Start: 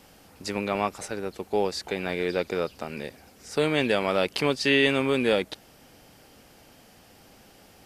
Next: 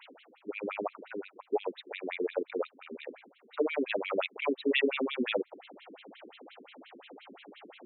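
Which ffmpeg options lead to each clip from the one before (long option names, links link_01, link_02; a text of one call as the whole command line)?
ffmpeg -i in.wav -af "equalizer=frequency=1700:width=3.2:gain=-4.5,areverse,acompressor=mode=upward:threshold=-31dB:ratio=2.5,areverse,afftfilt=real='re*between(b*sr/1024,290*pow(3000/290,0.5+0.5*sin(2*PI*5.7*pts/sr))/1.41,290*pow(3000/290,0.5+0.5*sin(2*PI*5.7*pts/sr))*1.41)':imag='im*between(b*sr/1024,290*pow(3000/290,0.5+0.5*sin(2*PI*5.7*pts/sr))/1.41,290*pow(3000/290,0.5+0.5*sin(2*PI*5.7*pts/sr))*1.41)':win_size=1024:overlap=0.75" out.wav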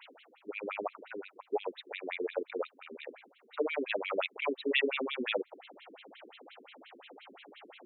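ffmpeg -i in.wav -af "equalizer=frequency=150:width_type=o:width=2.1:gain=-9.5" out.wav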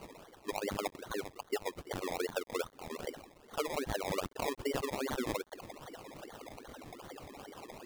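ffmpeg -i in.wav -af "acrusher=samples=24:mix=1:aa=0.000001:lfo=1:lforange=14.4:lforate=2.5,acompressor=threshold=-36dB:ratio=20,acrusher=bits=10:mix=0:aa=0.000001,volume=5dB" out.wav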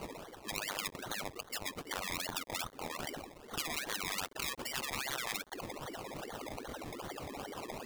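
ffmpeg -i in.wav -af "afftfilt=real='re*lt(hypot(re,im),0.0316)':imag='im*lt(hypot(re,im),0.0316)':win_size=1024:overlap=0.75,volume=6dB" out.wav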